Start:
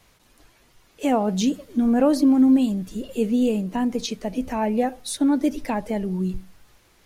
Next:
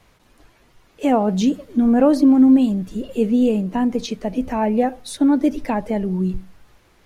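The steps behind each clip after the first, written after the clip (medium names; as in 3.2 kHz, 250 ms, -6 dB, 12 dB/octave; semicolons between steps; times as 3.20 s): treble shelf 3.4 kHz -8.5 dB; trim +4 dB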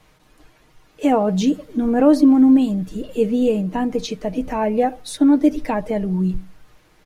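comb 6.5 ms, depth 42%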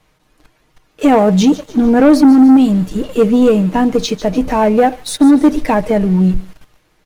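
waveshaping leveller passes 2; feedback echo behind a high-pass 148 ms, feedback 51%, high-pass 3 kHz, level -13.5 dB; trim +1.5 dB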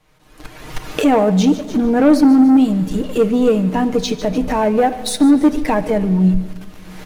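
recorder AGC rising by 40 dB/s; reverberation RT60 1.8 s, pre-delay 7 ms, DRR 12 dB; trim -4 dB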